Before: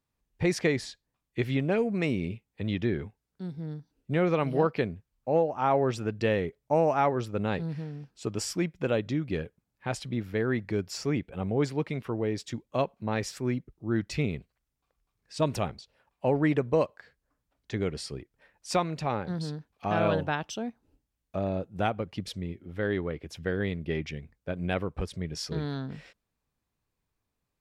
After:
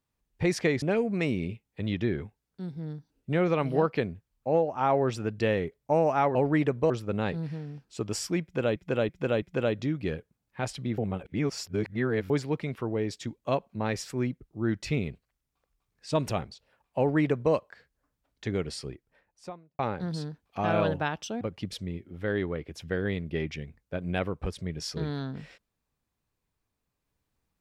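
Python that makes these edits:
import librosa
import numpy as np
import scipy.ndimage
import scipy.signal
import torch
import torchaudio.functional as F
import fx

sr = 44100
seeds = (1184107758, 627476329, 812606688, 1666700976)

y = fx.studio_fade_out(x, sr, start_s=18.1, length_s=0.96)
y = fx.edit(y, sr, fx.cut(start_s=0.82, length_s=0.81),
    fx.repeat(start_s=8.69, length_s=0.33, count=4),
    fx.reverse_span(start_s=10.25, length_s=1.32),
    fx.duplicate(start_s=16.25, length_s=0.55, to_s=7.16),
    fx.cut(start_s=20.68, length_s=1.28), tone=tone)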